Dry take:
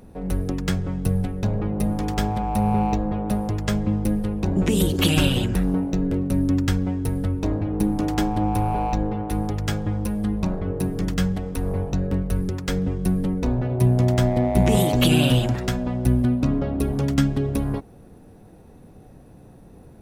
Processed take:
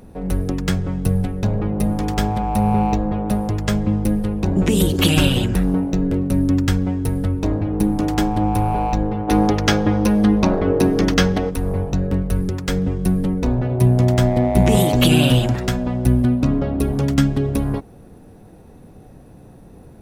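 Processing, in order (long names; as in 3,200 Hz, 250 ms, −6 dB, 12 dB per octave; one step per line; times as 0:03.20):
gain on a spectral selection 0:09.28–0:11.50, 210–6,600 Hz +9 dB
level +3.5 dB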